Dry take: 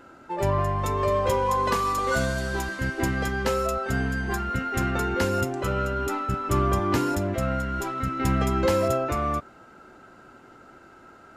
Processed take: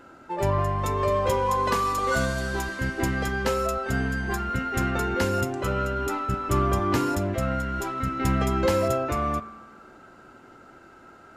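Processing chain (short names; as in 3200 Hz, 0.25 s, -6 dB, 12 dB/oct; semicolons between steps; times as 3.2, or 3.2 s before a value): spring tank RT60 1.2 s, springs 50 ms, DRR 16 dB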